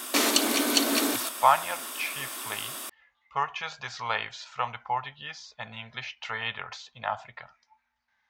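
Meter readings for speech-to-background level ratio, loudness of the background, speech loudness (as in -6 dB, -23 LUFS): -4.5 dB, -27.0 LUFS, -31.5 LUFS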